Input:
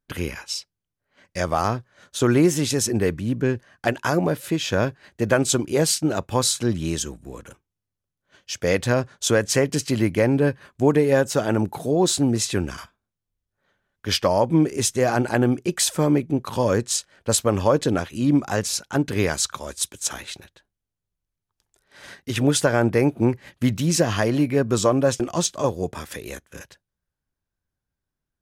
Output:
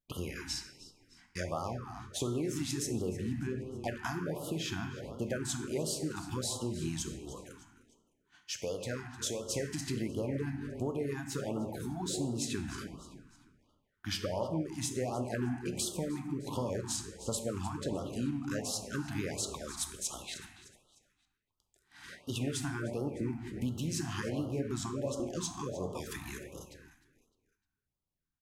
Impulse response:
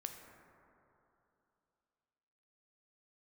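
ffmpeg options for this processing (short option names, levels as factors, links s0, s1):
-filter_complex "[0:a]asplit=4[s0][s1][s2][s3];[s1]adelay=304,afreqshift=-33,volume=0.126[s4];[s2]adelay=608,afreqshift=-66,volume=0.049[s5];[s3]adelay=912,afreqshift=-99,volume=0.0191[s6];[s0][s4][s5][s6]amix=inputs=4:normalize=0,acompressor=threshold=0.0562:ratio=6,asettb=1/sr,asplit=3[s7][s8][s9];[s7]atrim=end=7.164[s10];[s8]atrim=start=7.16:end=9.43,asetpts=PTS-STARTPTS,afade=t=in:d=0.004:c=qsin,afade=t=out:st=2.266:d=0.004:c=qsin,lowshelf=f=240:g=-7[s11];[s9]atrim=start=9.426[s12];[s10][s11]acrossfade=d=0.004:c1=hsin:c2=qsin[s13];[s13][s12]acrossfade=d=0.004:c1=qsin:c2=hsin[s14];[1:a]atrim=start_sample=2205,afade=t=out:st=0.43:d=0.01,atrim=end_sample=19404,asetrate=52920,aresample=44100[s15];[s14][s15]afir=irnorm=-1:irlink=0,afftfilt=real='re*(1-between(b*sr/1024,460*pow(2000/460,0.5+0.5*sin(2*PI*1.4*pts/sr))/1.41,460*pow(2000/460,0.5+0.5*sin(2*PI*1.4*pts/sr))*1.41))':imag='im*(1-between(b*sr/1024,460*pow(2000/460,0.5+0.5*sin(2*PI*1.4*pts/sr))/1.41,460*pow(2000/460,0.5+0.5*sin(2*PI*1.4*pts/sr))*1.41))':win_size=1024:overlap=0.75,volume=0.794"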